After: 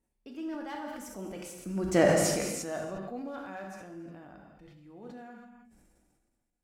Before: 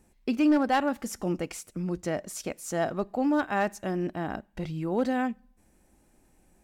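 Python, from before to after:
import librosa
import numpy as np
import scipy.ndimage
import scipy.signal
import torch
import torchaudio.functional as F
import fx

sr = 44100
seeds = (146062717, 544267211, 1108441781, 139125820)

y = fx.doppler_pass(x, sr, speed_mps=20, closest_m=1.9, pass_at_s=2.01)
y = fx.rev_gated(y, sr, seeds[0], gate_ms=380, shape='falling', drr_db=1.5)
y = fx.sustainer(y, sr, db_per_s=30.0)
y = y * librosa.db_to_amplitude(6.5)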